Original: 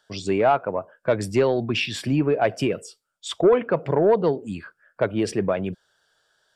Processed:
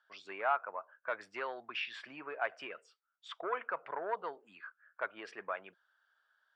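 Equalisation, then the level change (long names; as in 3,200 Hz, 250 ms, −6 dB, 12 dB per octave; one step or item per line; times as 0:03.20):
four-pole ladder band-pass 1,600 Hz, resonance 35%
spectral tilt −1.5 dB per octave
+3.5 dB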